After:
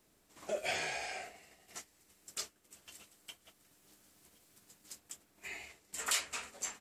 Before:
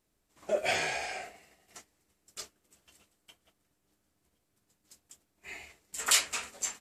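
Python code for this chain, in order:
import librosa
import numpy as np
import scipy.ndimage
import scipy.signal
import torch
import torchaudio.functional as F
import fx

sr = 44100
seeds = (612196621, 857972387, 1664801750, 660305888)

y = fx.high_shelf(x, sr, hz=2200.0, db=8.5, at=(1.77, 5.48))
y = fx.band_squash(y, sr, depth_pct=40)
y = F.gain(torch.from_numpy(y), -4.0).numpy()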